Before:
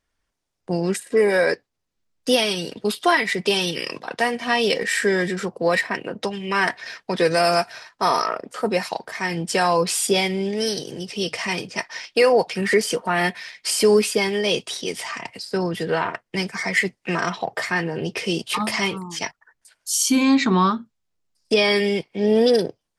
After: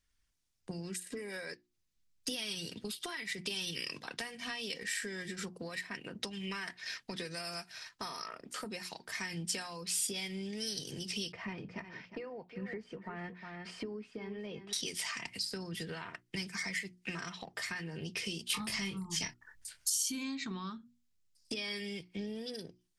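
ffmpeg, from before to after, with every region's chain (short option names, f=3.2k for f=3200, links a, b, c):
-filter_complex "[0:a]asettb=1/sr,asplit=3[a][b][c];[a]atrim=end=11.324[d];[b]atrim=start=11.32:end=14.73,asetpts=PTS-STARTPTS,afade=t=in:d=0.004:c=qsin,afade=t=out:st=3.406:d=0.004:c=qsin,lowpass=1.2k,aecho=1:1:357:0.211,atrim=end_sample=150381[e];[c]atrim=start=14.726[f];[d][e]acrossfade=d=0.004:c1=hsin:c2=qsin[g];[g][f]acrossfade=d=0.004:c1=qsin:c2=hsin,asettb=1/sr,asplit=3[h][i][j];[h]atrim=end=18.504[k];[i]atrim=start=18.5:end=19.9,asetpts=PTS-STARTPTS,afade=t=in:d=0.004:c=qsin,afade=t=out:st=1.396:d=0.004:c=qsin,lowshelf=f=230:g=9.5,asplit=2[l][m];[m]adelay=26,volume=-7.5dB[n];[l][n]amix=inputs=2:normalize=0,atrim=end_sample=61740,acontrast=31[o];[j]atrim=start=19.896[p];[k][o]acrossfade=d=0.004:c1=hsin:c2=qsin[q];[q][p]acrossfade=d=0.004:c1=qsin:c2=hsin,acompressor=threshold=-29dB:ratio=12,equalizer=f=630:w=0.47:g=-14.5,bandreject=f=60:t=h:w=6,bandreject=f=120:t=h:w=6,bandreject=f=180:t=h:w=6,bandreject=f=240:t=h:w=6,bandreject=f=300:t=h:w=6,bandreject=f=360:t=h:w=6"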